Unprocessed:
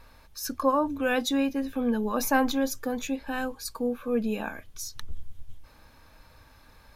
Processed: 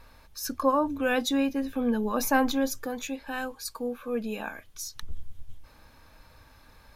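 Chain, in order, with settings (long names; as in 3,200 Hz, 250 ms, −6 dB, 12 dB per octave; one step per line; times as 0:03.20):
0:02.86–0:05.03: low-shelf EQ 430 Hz −6.5 dB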